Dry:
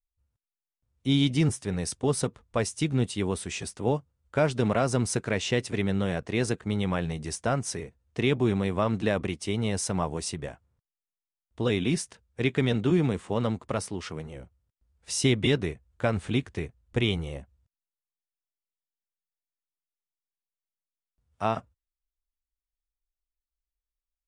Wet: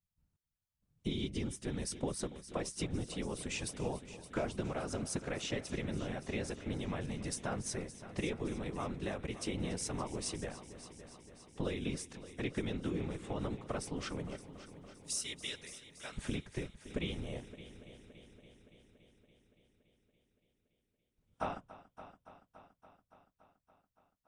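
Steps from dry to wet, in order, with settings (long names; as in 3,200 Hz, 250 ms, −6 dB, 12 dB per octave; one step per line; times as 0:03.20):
0:14.36–0:16.18: first-order pre-emphasis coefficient 0.97
downward compressor, threshold −32 dBFS, peak gain reduction 13 dB
random phases in short frames
on a send: echo machine with several playback heads 284 ms, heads first and second, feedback 62%, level −17 dB
on the sum: level −2.5 dB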